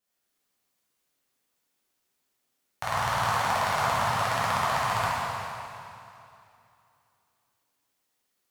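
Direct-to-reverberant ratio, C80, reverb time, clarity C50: -9.5 dB, -2.0 dB, 2.7 s, -4.0 dB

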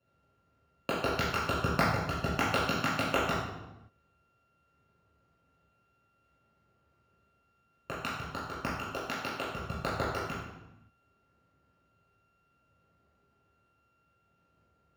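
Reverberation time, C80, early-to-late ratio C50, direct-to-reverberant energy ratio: 1.0 s, 3.5 dB, 1.0 dB, -8.5 dB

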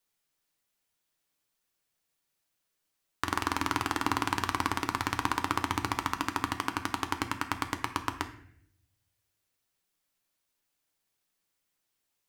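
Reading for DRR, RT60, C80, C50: 7.0 dB, 0.70 s, 14.5 dB, 11.5 dB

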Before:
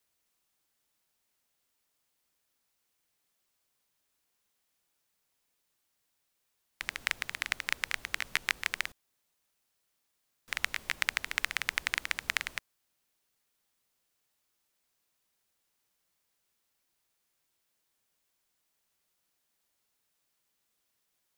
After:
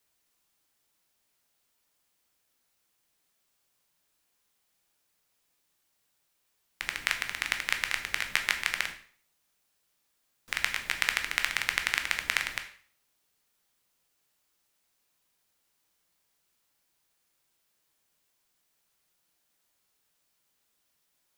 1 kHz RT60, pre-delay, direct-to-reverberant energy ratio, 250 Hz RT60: 0.50 s, 7 ms, 5.5 dB, 0.50 s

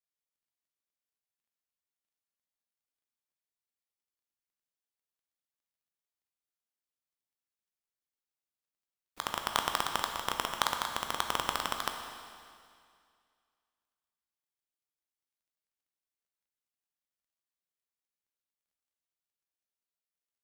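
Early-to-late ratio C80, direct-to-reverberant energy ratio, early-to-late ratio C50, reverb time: 6.5 dB, 4.0 dB, 5.5 dB, 2.2 s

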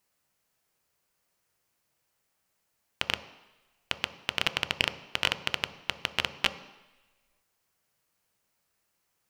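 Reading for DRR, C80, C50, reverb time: 10.0 dB, 16.0 dB, 13.5 dB, 1.1 s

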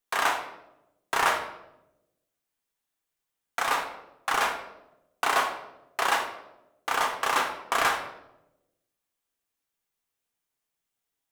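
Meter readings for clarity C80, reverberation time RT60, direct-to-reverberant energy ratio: 10.0 dB, 0.90 s, 2.0 dB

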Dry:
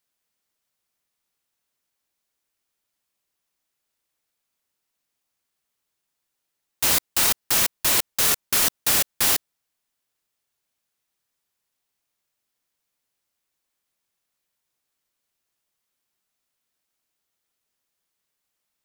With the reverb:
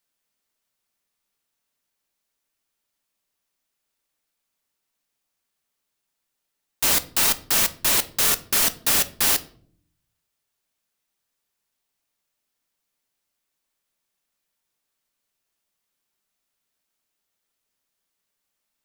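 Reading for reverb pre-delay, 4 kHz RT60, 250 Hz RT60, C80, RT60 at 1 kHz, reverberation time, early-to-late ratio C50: 3 ms, 0.35 s, 0.90 s, 23.0 dB, 0.45 s, 0.55 s, 18.0 dB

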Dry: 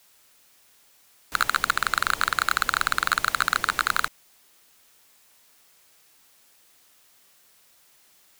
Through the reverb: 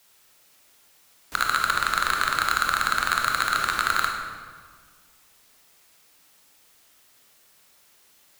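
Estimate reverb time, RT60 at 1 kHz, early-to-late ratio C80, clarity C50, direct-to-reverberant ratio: 1.7 s, 1.6 s, 5.0 dB, 3.0 dB, 1.0 dB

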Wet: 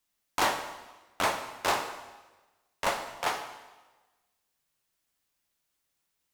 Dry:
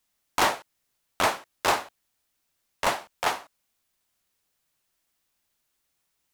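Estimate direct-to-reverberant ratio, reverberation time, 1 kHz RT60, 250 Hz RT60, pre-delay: 5.5 dB, 1.2 s, 1.2 s, 1.2 s, 4 ms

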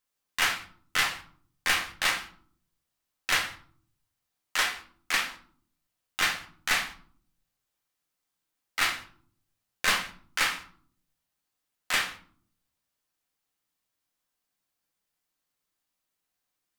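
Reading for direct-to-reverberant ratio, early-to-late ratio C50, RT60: 2.0 dB, 11.5 dB, not exponential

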